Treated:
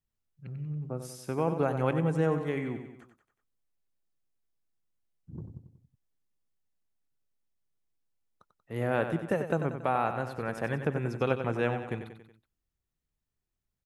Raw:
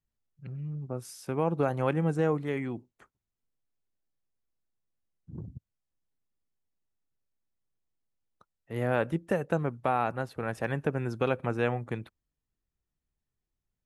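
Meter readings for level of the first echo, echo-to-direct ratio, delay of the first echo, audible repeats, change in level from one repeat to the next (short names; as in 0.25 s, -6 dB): -9.0 dB, -7.5 dB, 93 ms, 4, -5.5 dB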